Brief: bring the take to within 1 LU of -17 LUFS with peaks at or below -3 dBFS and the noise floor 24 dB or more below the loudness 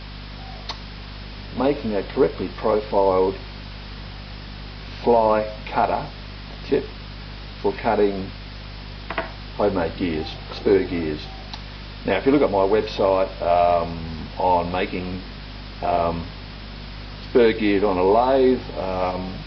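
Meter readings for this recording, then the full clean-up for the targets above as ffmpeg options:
hum 50 Hz; highest harmonic 250 Hz; hum level -34 dBFS; noise floor -36 dBFS; noise floor target -46 dBFS; loudness -21.5 LUFS; peak level -4.5 dBFS; loudness target -17.0 LUFS
-> -af "bandreject=f=50:t=h:w=4,bandreject=f=100:t=h:w=4,bandreject=f=150:t=h:w=4,bandreject=f=200:t=h:w=4,bandreject=f=250:t=h:w=4"
-af "afftdn=nr=10:nf=-36"
-af "volume=1.68,alimiter=limit=0.708:level=0:latency=1"

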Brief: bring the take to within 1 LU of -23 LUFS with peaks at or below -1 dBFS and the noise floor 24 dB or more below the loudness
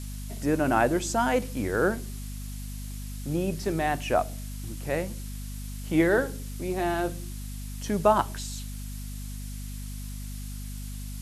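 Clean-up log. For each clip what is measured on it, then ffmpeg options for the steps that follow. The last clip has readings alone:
hum 50 Hz; highest harmonic 250 Hz; hum level -34 dBFS; noise floor -37 dBFS; noise floor target -54 dBFS; loudness -29.5 LUFS; peak level -7.0 dBFS; loudness target -23.0 LUFS
-> -af "bandreject=f=50:t=h:w=4,bandreject=f=100:t=h:w=4,bandreject=f=150:t=h:w=4,bandreject=f=200:t=h:w=4,bandreject=f=250:t=h:w=4"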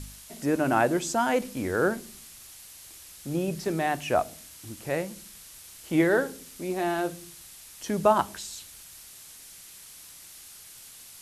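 hum not found; noise floor -48 dBFS; noise floor target -52 dBFS
-> -af "afftdn=nr=6:nf=-48"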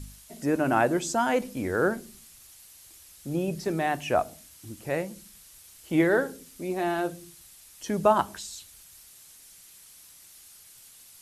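noise floor -52 dBFS; loudness -27.5 LUFS; peak level -7.5 dBFS; loudness target -23.0 LUFS
-> -af "volume=1.68"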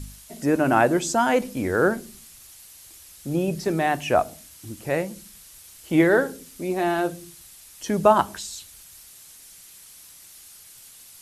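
loudness -23.0 LUFS; peak level -3.0 dBFS; noise floor -48 dBFS

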